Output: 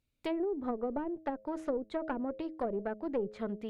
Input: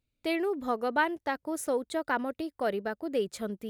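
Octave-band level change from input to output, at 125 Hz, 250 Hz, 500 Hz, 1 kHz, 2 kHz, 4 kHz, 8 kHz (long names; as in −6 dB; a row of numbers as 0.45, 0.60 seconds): can't be measured, −2.0 dB, −4.0 dB, −8.5 dB, −15.5 dB, −12.5 dB, below −20 dB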